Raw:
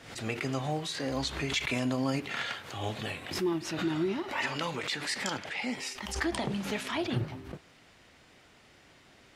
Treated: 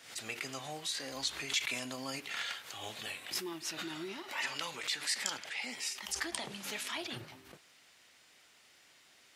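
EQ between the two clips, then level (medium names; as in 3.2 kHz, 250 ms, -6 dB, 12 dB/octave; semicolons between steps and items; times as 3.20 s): tilt EQ +3.5 dB/octave; -7.5 dB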